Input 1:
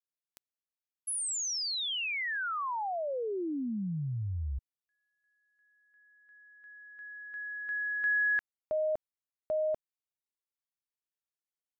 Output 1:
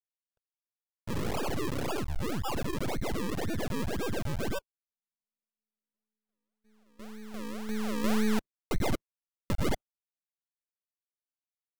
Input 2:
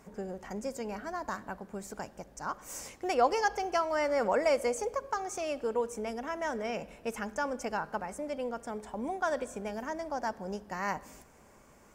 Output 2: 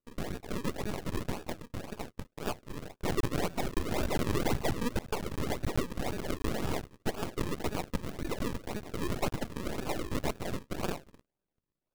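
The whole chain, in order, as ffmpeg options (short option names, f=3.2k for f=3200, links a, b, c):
-af "afftfilt=real='real(if(lt(b,272),68*(eq(floor(b/68),0)*1+eq(floor(b/68),1)*0+eq(floor(b/68),2)*3+eq(floor(b/68),3)*2)+mod(b,68),b),0)':imag='imag(if(lt(b,272),68*(eq(floor(b/68),0)*1+eq(floor(b/68),1)*0+eq(floor(b/68),2)*3+eq(floor(b/68),3)*2)+mod(b,68),b),0)':win_size=2048:overlap=0.75,acrusher=samples=42:mix=1:aa=0.000001:lfo=1:lforange=42:lforate=1.9,agate=range=-33dB:threshold=-47dB:ratio=3:release=56:detection=rms,alimiter=level_in=1dB:limit=-24dB:level=0:latency=1:release=178,volume=-1dB,aeval=exprs='max(val(0),0)':c=same,volume=6dB"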